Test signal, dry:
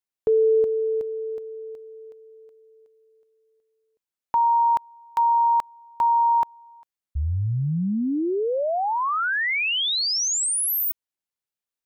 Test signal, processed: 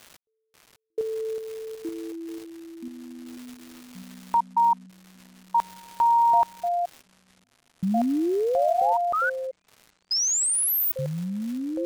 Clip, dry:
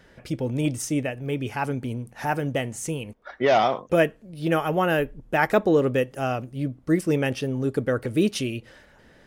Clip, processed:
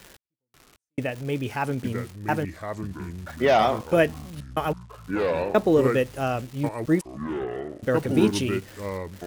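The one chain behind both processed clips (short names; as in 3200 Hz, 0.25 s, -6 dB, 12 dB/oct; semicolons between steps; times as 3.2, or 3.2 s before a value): crackle 470/s -35 dBFS; step gate "x.....xxxxxxx." 92 bpm -60 dB; echoes that change speed 0.54 s, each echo -5 st, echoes 3, each echo -6 dB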